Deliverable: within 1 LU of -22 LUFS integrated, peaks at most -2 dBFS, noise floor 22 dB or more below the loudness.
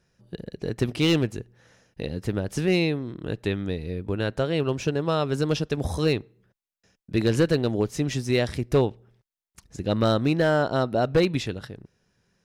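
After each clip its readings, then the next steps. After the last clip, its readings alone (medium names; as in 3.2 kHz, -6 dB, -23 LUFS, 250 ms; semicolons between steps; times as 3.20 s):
clipped samples 0.4%; clipping level -13.0 dBFS; loudness -25.5 LUFS; peak level -13.0 dBFS; loudness target -22.0 LUFS
-> clip repair -13 dBFS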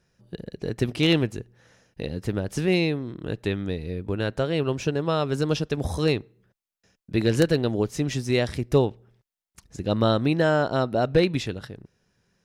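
clipped samples 0.0%; loudness -25.0 LUFS; peak level -4.0 dBFS; loudness target -22.0 LUFS
-> trim +3 dB; peak limiter -2 dBFS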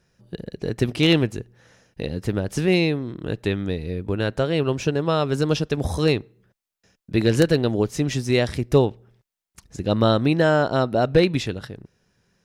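loudness -22.0 LUFS; peak level -2.0 dBFS; noise floor -86 dBFS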